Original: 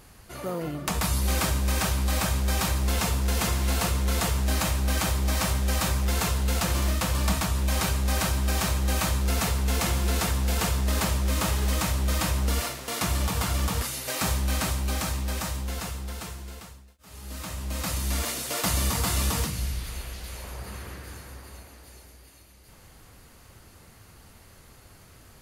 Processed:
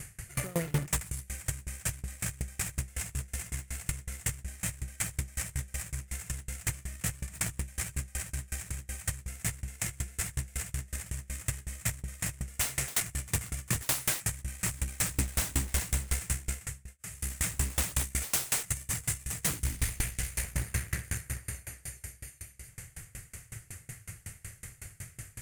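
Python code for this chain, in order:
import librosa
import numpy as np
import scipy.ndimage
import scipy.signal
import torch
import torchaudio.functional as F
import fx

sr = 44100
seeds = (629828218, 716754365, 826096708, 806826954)

y = fx.peak_eq(x, sr, hz=8500.0, db=3.0, octaves=0.73)
y = fx.over_compress(y, sr, threshold_db=-30.0, ratio=-0.5)
y = fx.graphic_eq(y, sr, hz=(125, 250, 500, 1000, 2000, 4000, 8000), db=(11, -10, -3, -12, 11, -11, 11))
y = 10.0 ** (-22.0 / 20.0) * (np.abs((y / 10.0 ** (-22.0 / 20.0) + 3.0) % 4.0 - 2.0) - 1.0)
y = fx.cheby_harmonics(y, sr, harmonics=(4, 6), levels_db=(-14, -19), full_scale_db=-22.0)
y = fx.tremolo_decay(y, sr, direction='decaying', hz=5.4, depth_db=27)
y = y * 10.0 ** (3.5 / 20.0)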